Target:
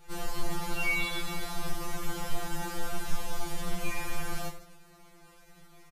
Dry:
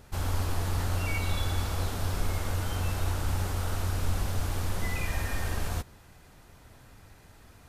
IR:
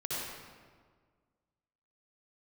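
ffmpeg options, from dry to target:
-af "atempo=1.3,aecho=1:1:20|50|95|162.5|263.8:0.631|0.398|0.251|0.158|0.1,afftfilt=real='re*2.83*eq(mod(b,8),0)':imag='im*2.83*eq(mod(b,8),0)':win_size=2048:overlap=0.75"

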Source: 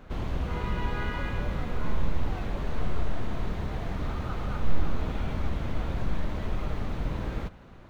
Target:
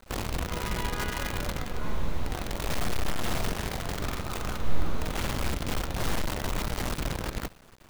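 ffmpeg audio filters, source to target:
ffmpeg -i in.wav -filter_complex "[0:a]bass=frequency=250:gain=-3,treble=frequency=4000:gain=7,acrusher=bits=6:dc=4:mix=0:aa=0.000001,asettb=1/sr,asplit=3[link_01][link_02][link_03];[link_01]atrim=end=3.264[link_04];[link_02]atrim=start=3.26:end=5.39,asetpts=PTS-STARTPTS,afade=type=in:duration=0.004:curve=qsin,afade=type=out:start_time=2.126:duration=0.004:curve=qsin,asplit=2[link_05][link_06];[link_06]adelay=45,volume=-8.5dB[link_07];[link_05][link_07]amix=inputs=2:normalize=0,atrim=end_sample=93933[link_08];[link_03]atrim=start=5.386[link_09];[link_04][link_08]acrossfade=duration=0.004:curve1=hsin:curve2=qsin[link_10];[link_10][link_09]acrossfade=duration=0.004:curve1=qsin:curve2=hsin" out.wav

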